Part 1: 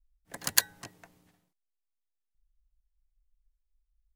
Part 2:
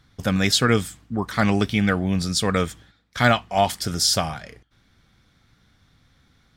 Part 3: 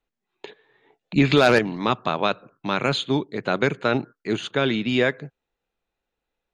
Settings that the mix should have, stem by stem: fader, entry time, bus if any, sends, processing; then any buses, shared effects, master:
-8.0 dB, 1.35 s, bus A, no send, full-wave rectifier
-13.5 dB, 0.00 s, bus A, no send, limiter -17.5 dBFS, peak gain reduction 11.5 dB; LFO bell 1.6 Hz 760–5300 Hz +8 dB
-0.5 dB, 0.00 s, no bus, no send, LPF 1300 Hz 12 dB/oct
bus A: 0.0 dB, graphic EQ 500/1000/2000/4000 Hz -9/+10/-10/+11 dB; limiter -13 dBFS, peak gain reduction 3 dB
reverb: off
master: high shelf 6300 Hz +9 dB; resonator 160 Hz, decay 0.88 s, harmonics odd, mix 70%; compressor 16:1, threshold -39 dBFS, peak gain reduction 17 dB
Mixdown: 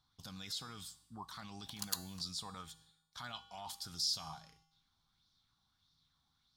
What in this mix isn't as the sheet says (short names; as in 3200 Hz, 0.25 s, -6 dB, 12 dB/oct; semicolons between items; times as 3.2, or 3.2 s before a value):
stem 1: missing full-wave rectifier; stem 3: muted; master: missing compressor 16:1, threshold -39 dBFS, peak gain reduction 17 dB